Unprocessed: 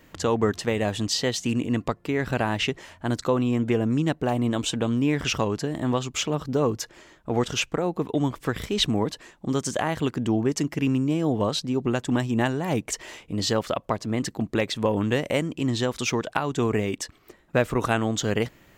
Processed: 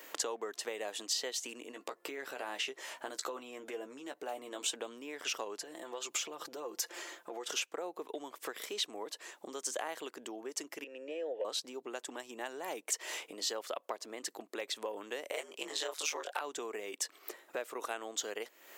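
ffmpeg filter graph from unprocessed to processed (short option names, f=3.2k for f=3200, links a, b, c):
-filter_complex "[0:a]asettb=1/sr,asplit=3[a][b][c];[a]atrim=end=1.714[d];[b]atrim=start=1.71:end=4.68,asetpts=PTS-STARTPTS,afade=t=in:d=0.004:c=qsin,afade=t=out:st=2.966:d=0.004:c=qsin,acompressor=threshold=-24dB:ratio=6:attack=3.2:release=140:knee=1:detection=peak,asplit=2[e][f];[f]adelay=15,volume=-8dB[g];[e][g]amix=inputs=2:normalize=0,atrim=end_sample=130977[h];[c]atrim=start=4.676[i];[d][h]acrossfade=d=0.004:c1=hsin:c2=qsin[j];[j][i]acrossfade=d=0.004:c1=qsin:c2=hsin,asettb=1/sr,asplit=3[k][l][m];[k]atrim=end=5.604[n];[l]atrim=start=5.6:end=7.5,asetpts=PTS-STARTPTS,afade=t=in:d=0.004:c=qsin,afade=t=out:st=1.896:d=0.004:c=qsin,acompressor=threshold=-33dB:ratio=6:attack=3.2:release=140:knee=1:detection=peak,aecho=1:1:5.8:0.49,atrim=end_sample=83790[o];[m]atrim=start=7.496[p];[n][o]acrossfade=d=0.004:c1=hsin:c2=qsin[q];[q][p]acrossfade=d=0.004:c1=qsin:c2=hsin,asettb=1/sr,asplit=3[r][s][t];[r]atrim=end=10.844[u];[s]atrim=start=10.84:end=11.45,asetpts=PTS-STARTPTS,afade=t=in:d=0.004:c=qsin,afade=t=out:st=0.606:d=0.004:c=qsin,equalizer=f=1k:t=o:w=0.55:g=8.5,acontrast=74,asplit=3[v][w][x];[v]bandpass=f=530:t=q:w=8,volume=0dB[y];[w]bandpass=f=1.84k:t=q:w=8,volume=-6dB[z];[x]bandpass=f=2.48k:t=q:w=8,volume=-9dB[aa];[y][z][aa]amix=inputs=3:normalize=0[ab];[t]atrim=start=11.446[ac];[u][ab]acrossfade=d=0.004:c1=hsin:c2=qsin[ad];[ad][ac]acrossfade=d=0.004:c1=qsin:c2=hsin,asettb=1/sr,asplit=3[ae][af][ag];[ae]atrim=end=15.324[ah];[af]atrim=start=15.32:end=16.41,asetpts=PTS-STARTPTS,afade=t=in:d=0.004:c=qsin,afade=t=out:st=1.086:d=0.004:c=qsin,highpass=450,asplit=2[ai][aj];[aj]adelay=22,volume=-3dB[ak];[ai][ak]amix=inputs=2:normalize=0,atrim=end_sample=48069,aeval=exprs='val(0)*sin(2*PI*78*n/s)':c=same[al];[ag]atrim=start=16.406[am];[ah][al]acrossfade=d=0.004:c1=hsin:c2=qsin[an];[an][am]acrossfade=d=0.004:c1=qsin:c2=hsin,acompressor=threshold=-39dB:ratio=6,highpass=f=390:w=0.5412,highpass=f=390:w=1.3066,highshelf=f=7k:g=10,volume=3.5dB"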